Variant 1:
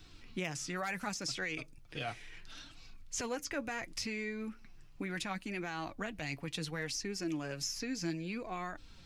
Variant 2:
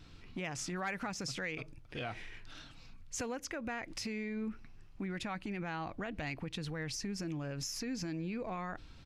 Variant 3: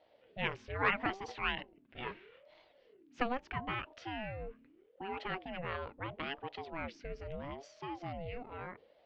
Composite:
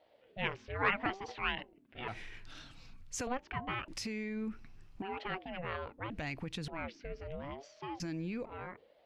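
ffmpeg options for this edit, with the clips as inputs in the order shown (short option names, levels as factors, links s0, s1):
-filter_complex "[1:a]asplit=4[s0][s1][s2][s3];[2:a]asplit=5[s4][s5][s6][s7][s8];[s4]atrim=end=2.082[s9];[s0]atrim=start=2.078:end=3.272[s10];[s5]atrim=start=3.268:end=3.882[s11];[s1]atrim=start=3.878:end=5.022[s12];[s6]atrim=start=5.018:end=6.102[s13];[s2]atrim=start=6.098:end=6.682[s14];[s7]atrim=start=6.678:end=8.002[s15];[s3]atrim=start=7.998:end=8.452[s16];[s8]atrim=start=8.448[s17];[s9][s10]acrossfade=d=0.004:c1=hsin:c2=hsin[s18];[s18][s11]acrossfade=d=0.004:c1=hsin:c2=hsin[s19];[s19][s12]acrossfade=d=0.004:c1=hsin:c2=hsin[s20];[s20][s13]acrossfade=d=0.004:c1=hsin:c2=hsin[s21];[s21][s14]acrossfade=d=0.004:c1=hsin:c2=hsin[s22];[s22][s15]acrossfade=d=0.004:c1=hsin:c2=hsin[s23];[s23][s16]acrossfade=d=0.004:c1=hsin:c2=hsin[s24];[s24][s17]acrossfade=d=0.004:c1=hsin:c2=hsin"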